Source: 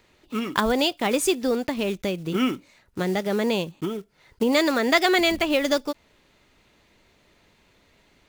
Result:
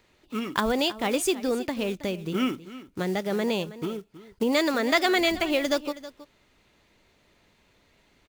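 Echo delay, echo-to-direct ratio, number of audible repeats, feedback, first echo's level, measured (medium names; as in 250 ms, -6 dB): 321 ms, -16.0 dB, 1, no regular repeats, -16.0 dB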